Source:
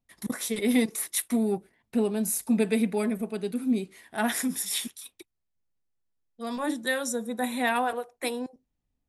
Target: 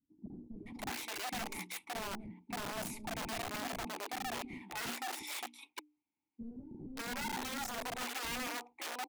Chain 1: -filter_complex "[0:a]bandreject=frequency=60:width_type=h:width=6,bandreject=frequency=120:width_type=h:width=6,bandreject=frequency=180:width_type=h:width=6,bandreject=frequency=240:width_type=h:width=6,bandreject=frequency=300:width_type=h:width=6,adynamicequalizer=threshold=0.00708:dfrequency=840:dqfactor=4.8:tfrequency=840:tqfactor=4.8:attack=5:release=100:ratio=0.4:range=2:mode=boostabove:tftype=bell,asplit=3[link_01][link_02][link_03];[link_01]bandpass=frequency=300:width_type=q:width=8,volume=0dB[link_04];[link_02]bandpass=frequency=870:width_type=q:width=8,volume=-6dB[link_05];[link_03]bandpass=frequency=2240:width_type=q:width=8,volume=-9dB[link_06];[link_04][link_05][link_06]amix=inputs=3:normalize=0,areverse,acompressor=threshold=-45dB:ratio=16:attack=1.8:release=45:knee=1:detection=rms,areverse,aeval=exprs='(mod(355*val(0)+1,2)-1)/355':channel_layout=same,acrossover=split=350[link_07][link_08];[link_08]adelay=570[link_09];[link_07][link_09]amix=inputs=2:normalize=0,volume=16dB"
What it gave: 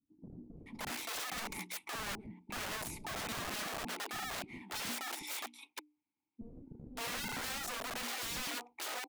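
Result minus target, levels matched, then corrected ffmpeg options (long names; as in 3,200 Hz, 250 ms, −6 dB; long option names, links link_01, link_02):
downward compressor: peak gain reduction −5.5 dB
-filter_complex "[0:a]bandreject=frequency=60:width_type=h:width=6,bandreject=frequency=120:width_type=h:width=6,bandreject=frequency=180:width_type=h:width=6,bandreject=frequency=240:width_type=h:width=6,bandreject=frequency=300:width_type=h:width=6,adynamicequalizer=threshold=0.00708:dfrequency=840:dqfactor=4.8:tfrequency=840:tqfactor=4.8:attack=5:release=100:ratio=0.4:range=2:mode=boostabove:tftype=bell,asplit=3[link_01][link_02][link_03];[link_01]bandpass=frequency=300:width_type=q:width=8,volume=0dB[link_04];[link_02]bandpass=frequency=870:width_type=q:width=8,volume=-6dB[link_05];[link_03]bandpass=frequency=2240:width_type=q:width=8,volume=-9dB[link_06];[link_04][link_05][link_06]amix=inputs=3:normalize=0,areverse,acompressor=threshold=-51dB:ratio=16:attack=1.8:release=45:knee=1:detection=rms,areverse,aeval=exprs='(mod(355*val(0)+1,2)-1)/355':channel_layout=same,acrossover=split=350[link_07][link_08];[link_08]adelay=570[link_09];[link_07][link_09]amix=inputs=2:normalize=0,volume=16dB"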